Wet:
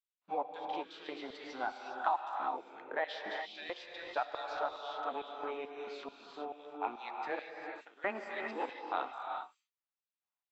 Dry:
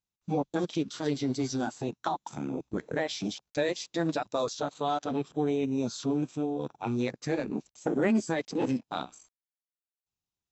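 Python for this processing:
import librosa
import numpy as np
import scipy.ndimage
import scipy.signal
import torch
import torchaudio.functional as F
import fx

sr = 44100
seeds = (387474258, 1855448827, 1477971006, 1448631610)

y = scipy.signal.sosfilt(scipy.signal.butter(2, 190.0, 'highpass', fs=sr, output='sos'), x)
y = fx.filter_lfo_highpass(y, sr, shape='square', hz=2.3, low_hz=860.0, high_hz=3200.0, q=1.2)
y = 10.0 ** (-16.5 / 20.0) * np.tanh(y / 10.0 ** (-16.5 / 20.0))
y = fx.air_absorb(y, sr, metres=450.0)
y = fx.rev_gated(y, sr, seeds[0], gate_ms=430, shape='rising', drr_db=2.0)
y = y * librosa.db_to_amplitude(1.5)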